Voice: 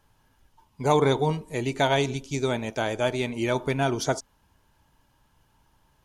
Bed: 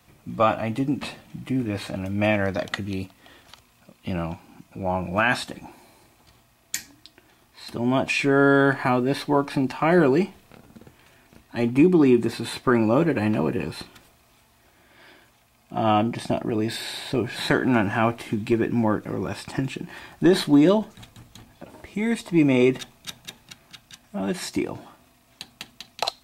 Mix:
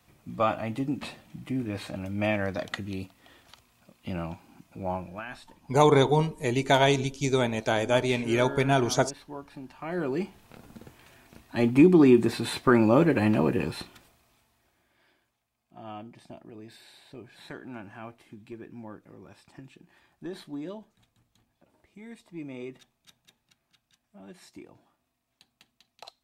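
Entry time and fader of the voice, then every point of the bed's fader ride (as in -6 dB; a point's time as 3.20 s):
4.90 s, +1.5 dB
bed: 4.92 s -5.5 dB
5.26 s -19.5 dB
9.68 s -19.5 dB
10.61 s -0.5 dB
13.67 s -0.5 dB
15.47 s -21 dB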